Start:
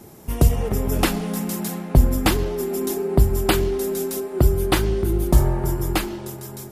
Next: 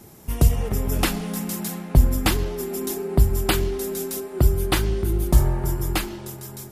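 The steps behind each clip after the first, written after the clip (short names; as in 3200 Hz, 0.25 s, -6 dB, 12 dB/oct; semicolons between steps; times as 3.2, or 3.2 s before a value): bell 450 Hz -4.5 dB 2.8 oct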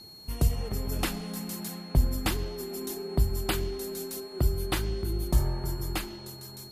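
whine 4300 Hz -39 dBFS; gain -8 dB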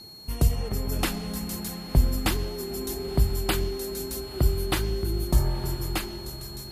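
diffused feedback echo 0.967 s, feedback 42%, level -16 dB; gain +3 dB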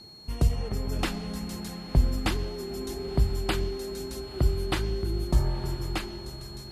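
air absorption 51 m; gain -1.5 dB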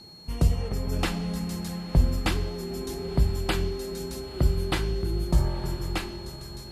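reverb RT60 0.45 s, pre-delay 3 ms, DRR 8.5 dB; gain +1 dB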